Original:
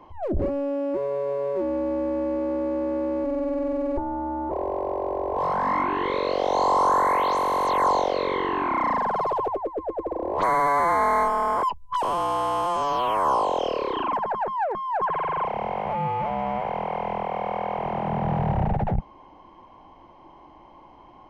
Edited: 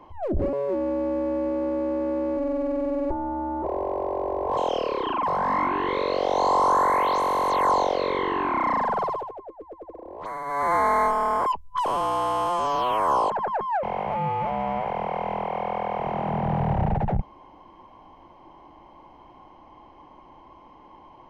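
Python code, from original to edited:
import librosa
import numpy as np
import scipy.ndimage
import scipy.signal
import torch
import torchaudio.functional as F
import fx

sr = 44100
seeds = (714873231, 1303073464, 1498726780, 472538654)

y = fx.edit(x, sr, fx.cut(start_s=0.53, length_s=0.87),
    fx.fade_down_up(start_s=9.17, length_s=1.75, db=-12.0, fade_s=0.3),
    fx.move(start_s=13.47, length_s=0.7, to_s=5.44),
    fx.cut(start_s=14.7, length_s=0.92), tone=tone)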